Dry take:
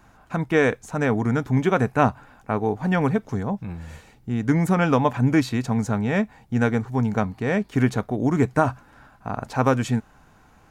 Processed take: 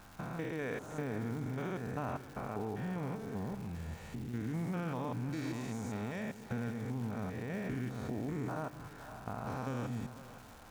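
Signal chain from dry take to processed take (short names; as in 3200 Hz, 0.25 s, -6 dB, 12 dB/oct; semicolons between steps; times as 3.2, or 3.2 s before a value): stepped spectrum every 0.2 s; 5.53–6.21 tone controls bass -5 dB, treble +7 dB; compressor 3:1, threshold -39 dBFS, peak gain reduction 15.5 dB; crackle 490/s -46 dBFS; split-band echo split 450 Hz, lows 0.158 s, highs 0.514 s, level -12.5 dB; gain -1 dB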